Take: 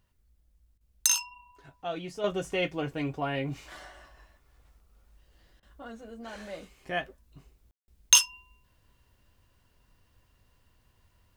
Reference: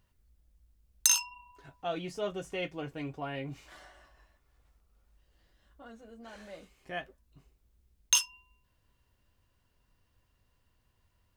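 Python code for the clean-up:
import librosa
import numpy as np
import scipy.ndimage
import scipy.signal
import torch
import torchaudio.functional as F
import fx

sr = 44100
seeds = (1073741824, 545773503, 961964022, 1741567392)

y = fx.fix_ambience(x, sr, seeds[0], print_start_s=0.01, print_end_s=0.51, start_s=7.71, end_s=7.88)
y = fx.fix_interpolate(y, sr, at_s=(0.78, 5.6), length_ms=26.0)
y = fx.fix_level(y, sr, at_s=2.24, step_db=-6.5)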